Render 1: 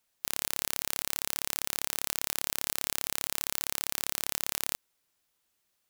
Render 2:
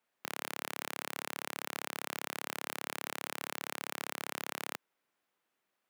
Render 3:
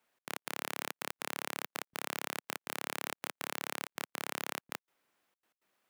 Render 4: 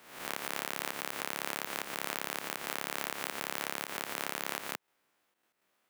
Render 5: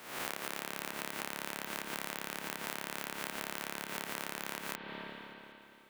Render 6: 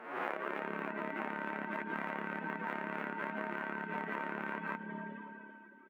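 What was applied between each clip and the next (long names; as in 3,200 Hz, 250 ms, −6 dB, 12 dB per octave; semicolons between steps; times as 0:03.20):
three-way crossover with the lows and the highs turned down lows −21 dB, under 160 Hz, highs −14 dB, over 2,600 Hz; level +1.5 dB
brickwall limiter −23.5 dBFS, peak gain reduction 3.5 dB; gate pattern "xx.x.xxx" 163 BPM −60 dB; level +5 dB
peak hold with a rise ahead of every peak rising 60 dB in 0.74 s
on a send at −7 dB: convolution reverb RT60 2.9 s, pre-delay 45 ms; on the sum: downward compressor 5 to 1, threshold −42 dBFS, peak gain reduction 11.5 dB; level +6.5 dB
expanding power law on the bin magnitudes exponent 3.6; repeating echo 278 ms, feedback 58%, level −20.5 dB; level +2.5 dB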